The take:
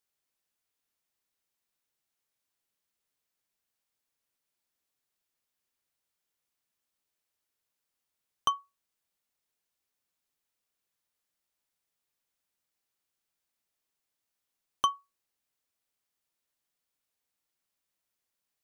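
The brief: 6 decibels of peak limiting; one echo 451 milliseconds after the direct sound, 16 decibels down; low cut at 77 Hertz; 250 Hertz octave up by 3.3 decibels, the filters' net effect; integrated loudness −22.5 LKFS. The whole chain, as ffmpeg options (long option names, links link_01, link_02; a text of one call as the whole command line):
ffmpeg -i in.wav -af "highpass=77,equalizer=frequency=250:width_type=o:gain=4.5,alimiter=limit=-18dB:level=0:latency=1,aecho=1:1:451:0.158,volume=16.5dB" out.wav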